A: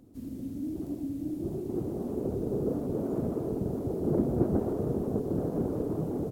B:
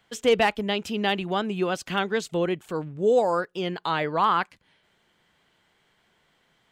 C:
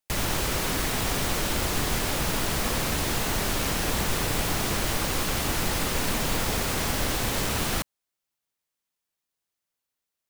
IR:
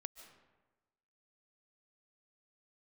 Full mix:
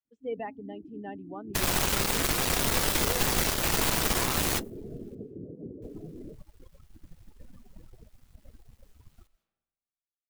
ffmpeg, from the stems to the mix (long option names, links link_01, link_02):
-filter_complex "[0:a]adelay=50,volume=-10.5dB[link_01];[1:a]lowpass=frequency=1800:poles=1,volume=-13.5dB,asplit=2[link_02][link_03];[2:a]bandreject=frequency=50:width_type=h:width=6,bandreject=frequency=100:width_type=h:width=6,bandreject=frequency=150:width_type=h:width=6,bandreject=frequency=200:width_type=h:width=6,bandreject=frequency=250:width_type=h:width=6,bandreject=frequency=300:width_type=h:width=6,acrusher=bits=3:mix=0:aa=0.000001,adelay=1450,volume=2dB,asplit=3[link_04][link_05][link_06];[link_04]atrim=end=5.15,asetpts=PTS-STARTPTS,afade=type=out:start_time=5.146:duration=0.004:curve=hsin[link_07];[link_05]atrim=start=5.15:end=5.82,asetpts=PTS-STARTPTS,volume=0[link_08];[link_06]atrim=start=5.82,asetpts=PTS-STARTPTS,afade=type=in:duration=0.004:curve=hsin[link_09];[link_07][link_08][link_09]concat=n=3:v=0:a=1,asplit=2[link_10][link_11];[link_11]volume=-15.5dB[link_12];[link_03]apad=whole_len=517956[link_13];[link_10][link_13]sidechaingate=range=-33dB:threshold=-58dB:ratio=16:detection=peak[link_14];[3:a]atrim=start_sample=2205[link_15];[link_12][link_15]afir=irnorm=-1:irlink=0[link_16];[link_01][link_02][link_14][link_16]amix=inputs=4:normalize=0,afftdn=noise_reduction=27:noise_floor=-35,alimiter=limit=-16.5dB:level=0:latency=1:release=181"